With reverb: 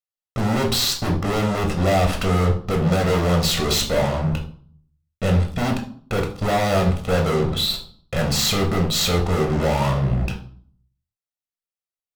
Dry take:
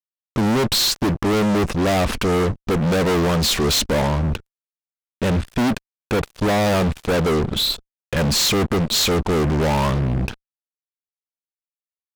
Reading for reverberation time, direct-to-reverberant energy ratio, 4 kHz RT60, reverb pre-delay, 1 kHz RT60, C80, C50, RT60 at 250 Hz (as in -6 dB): 0.50 s, 2.0 dB, 0.40 s, 11 ms, 0.50 s, 14.0 dB, 10.0 dB, 0.75 s